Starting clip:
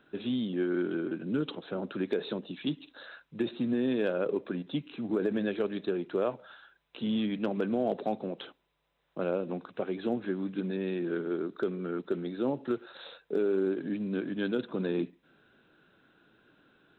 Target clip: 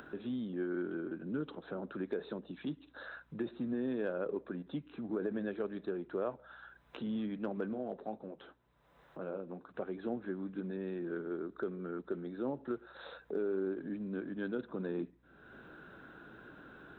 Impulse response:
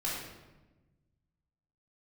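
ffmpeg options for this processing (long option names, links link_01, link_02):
-filter_complex "[0:a]highshelf=frequency=2000:width_type=q:width=1.5:gain=-6.5,acompressor=mode=upward:threshold=-31dB:ratio=2.5,aeval=exprs='val(0)+0.000631*(sin(2*PI*60*n/s)+sin(2*PI*2*60*n/s)/2+sin(2*PI*3*60*n/s)/3+sin(2*PI*4*60*n/s)/4+sin(2*PI*5*60*n/s)/5)':channel_layout=same,asettb=1/sr,asplit=3[link_01][link_02][link_03];[link_01]atrim=end=7.734[link_04];[link_02]atrim=start=7.73:end=9.74,asetpts=PTS-STARTPTS,afade=type=in:duration=0.004:curve=qsin,afade=type=out:start_time=2.006:duration=0.004:curve=qsin,flanger=delay=6:depth=6.1:regen=-51:speed=2:shape=triangular[link_05];[link_03]atrim=start=9.736[link_06];[link_04][link_05]acrossfade=duration=0.004:curve1=hsin:curve2=qsin[link_07];[link_07][link_06]acrossfade=duration=0.004:curve1=qsin:curve2=hsin,volume=-7dB"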